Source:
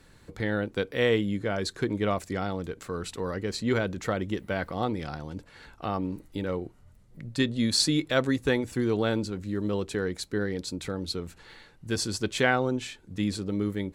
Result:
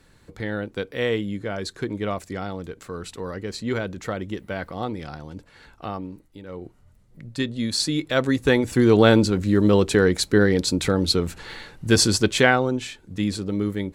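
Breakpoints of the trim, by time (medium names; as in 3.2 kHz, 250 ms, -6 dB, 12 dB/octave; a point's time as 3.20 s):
5.87 s 0 dB
6.43 s -10 dB
6.66 s 0 dB
7.85 s 0 dB
9.04 s +12 dB
12.06 s +12 dB
12.67 s +4 dB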